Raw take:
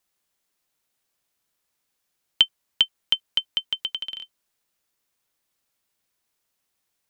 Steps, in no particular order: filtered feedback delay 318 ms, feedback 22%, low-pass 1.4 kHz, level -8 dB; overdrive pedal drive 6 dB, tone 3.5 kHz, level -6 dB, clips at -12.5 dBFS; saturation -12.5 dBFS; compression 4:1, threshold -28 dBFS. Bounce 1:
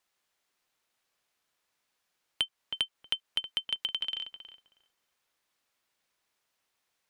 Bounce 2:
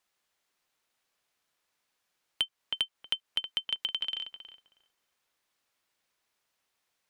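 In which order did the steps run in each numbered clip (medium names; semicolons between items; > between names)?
overdrive pedal > filtered feedback delay > saturation > compression; filtered feedback delay > saturation > compression > overdrive pedal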